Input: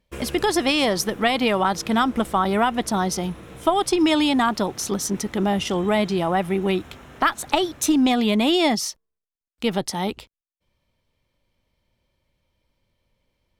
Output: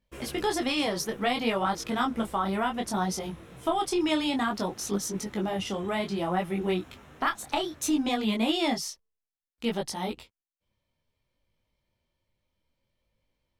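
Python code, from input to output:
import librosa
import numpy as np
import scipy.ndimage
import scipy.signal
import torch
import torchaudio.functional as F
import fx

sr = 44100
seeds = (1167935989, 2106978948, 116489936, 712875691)

y = fx.detune_double(x, sr, cents=21)
y = F.gain(torch.from_numpy(y), -3.5).numpy()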